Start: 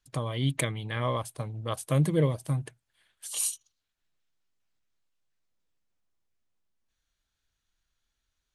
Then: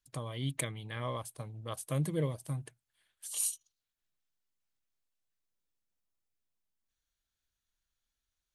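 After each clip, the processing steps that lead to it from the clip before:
high-shelf EQ 7,200 Hz +7.5 dB
level −8 dB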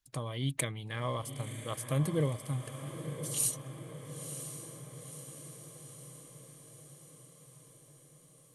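feedback delay with all-pass diffusion 993 ms, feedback 62%, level −9.5 dB
level +2 dB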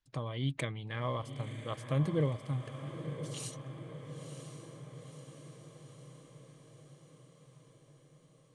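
high-frequency loss of the air 120 metres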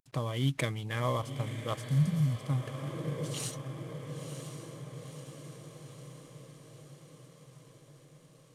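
variable-slope delta modulation 64 kbit/s
healed spectral selection 0:01.85–0:02.41, 260–4,700 Hz
level +4.5 dB

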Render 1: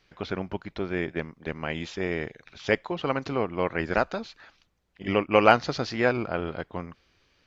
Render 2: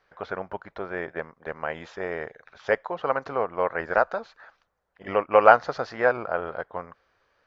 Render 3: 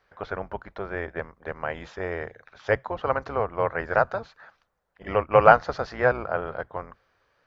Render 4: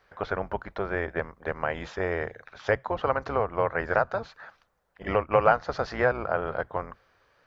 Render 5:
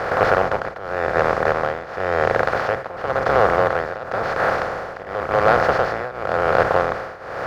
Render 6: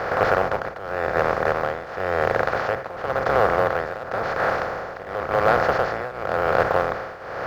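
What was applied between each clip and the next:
flat-topped bell 900 Hz +13.5 dB 2.3 octaves; level −9.5 dB
sub-octave generator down 2 octaves, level −2 dB
downward compressor 2 to 1, threshold −27 dBFS, peak gain reduction 10.5 dB; level +3.5 dB
compressor on every frequency bin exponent 0.2; leveller curve on the samples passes 1; shaped tremolo triangle 0.94 Hz, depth 90%; level −1 dB
mu-law and A-law mismatch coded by mu; level −3 dB

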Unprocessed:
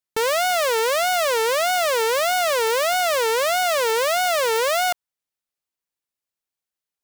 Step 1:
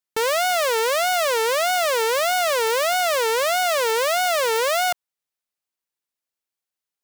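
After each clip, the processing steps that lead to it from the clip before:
low-shelf EQ 170 Hz −5.5 dB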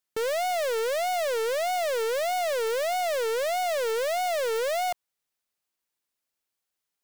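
gain into a clipping stage and back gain 29 dB
level +3 dB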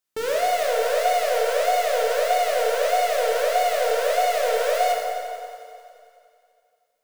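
delay with a high-pass on its return 89 ms, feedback 78%, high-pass 2,200 Hz, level −12.5 dB
dense smooth reverb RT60 2.4 s, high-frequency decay 0.5×, DRR −3 dB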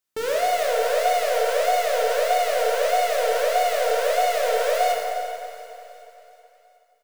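repeating echo 369 ms, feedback 53%, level −16.5 dB

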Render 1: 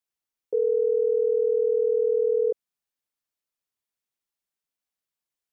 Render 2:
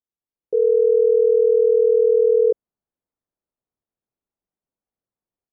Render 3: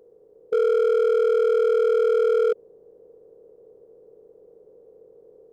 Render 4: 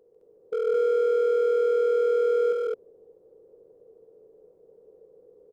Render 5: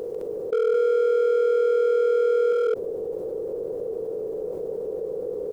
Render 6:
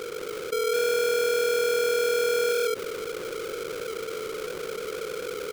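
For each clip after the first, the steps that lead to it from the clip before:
Bessel low-pass filter 580 Hz, order 2; automatic gain control gain up to 9 dB
compressor on every frequency bin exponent 0.4; brickwall limiter −12 dBFS, peak gain reduction 3.5 dB; hard clipping −16 dBFS, distortion −15 dB
loudspeakers that aren't time-aligned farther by 50 metres −5 dB, 73 metres −1 dB; level −7 dB
envelope flattener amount 70%; level +1.5 dB
each half-wave held at its own peak; level −6.5 dB

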